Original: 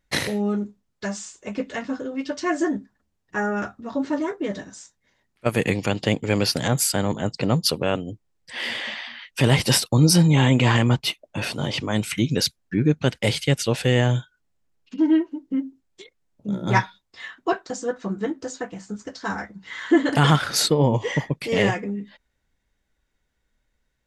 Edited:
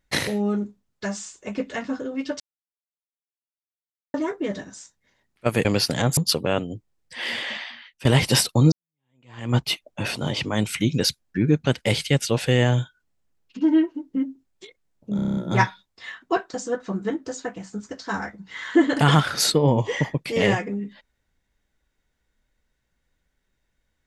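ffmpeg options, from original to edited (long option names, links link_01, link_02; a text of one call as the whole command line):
ffmpeg -i in.wav -filter_complex "[0:a]asplit=14[link_01][link_02][link_03][link_04][link_05][link_06][link_07][link_08][link_09][link_10][link_11][link_12][link_13][link_14];[link_01]atrim=end=2.4,asetpts=PTS-STARTPTS,afade=type=out:start_time=2.396:duration=0.004:curve=hsin[link_15];[link_02]atrim=start=2.4:end=4.14,asetpts=PTS-STARTPTS,volume=0[link_16];[link_03]atrim=start=4.14:end=5.652,asetpts=PTS-STARTPTS,afade=type=in:duration=0.004:curve=hsin[link_17];[link_04]atrim=start=6.308:end=6.832[link_18];[link_05]atrim=start=7.538:end=9.42,asetpts=PTS-STARTPTS,afade=type=out:start_time=1.412:duration=0.47:silence=0.105925[link_19];[link_06]atrim=start=9.42:end=10.09,asetpts=PTS-STARTPTS,afade=type=in:duration=0.004:curve=hsin:silence=0.105925,afade=type=out:start_time=0.666:duration=0.004:curve=hsin[link_20];[link_07]atrim=start=10.09:end=16.562,asetpts=PTS-STARTPTS,afade=type=in:duration=0.83:curve=exp[link_21];[link_08]atrim=start=16.528:end=16.562[link_22];[link_09]atrim=start=16.528:end=16.562[link_23];[link_10]atrim=start=16.528:end=16.562[link_24];[link_11]atrim=start=16.528:end=16.562[link_25];[link_12]atrim=start=16.528:end=16.562[link_26];[link_13]atrim=start=16.528:end=16.562[link_27];[link_14]atrim=start=16.528[link_28];[link_15][link_16][link_17]concat=n=3:v=0:a=1[link_29];[link_29][link_18]acrossfade=duration=0.004:curve1=hsin:curve2=hsin[link_30];[link_19][link_20][link_21]concat=n=3:v=0:a=1[link_31];[link_30][link_31]acrossfade=duration=0.004:curve1=hsin:curve2=hsin[link_32];[link_32][link_22]acrossfade=duration=0.004:curve1=hsin:curve2=hsin[link_33];[link_33][link_23]acrossfade=duration=0.004:curve1=hsin:curve2=hsin[link_34];[link_34][link_24]acrossfade=duration=0.004:curve1=hsin:curve2=hsin[link_35];[link_35][link_25]acrossfade=duration=0.004:curve1=hsin:curve2=hsin[link_36];[link_36][link_26]acrossfade=duration=0.004:curve1=hsin:curve2=hsin[link_37];[link_37][link_27]acrossfade=duration=0.004:curve1=hsin:curve2=hsin[link_38];[link_38][link_28]acrossfade=duration=0.004:curve1=hsin:curve2=hsin" out.wav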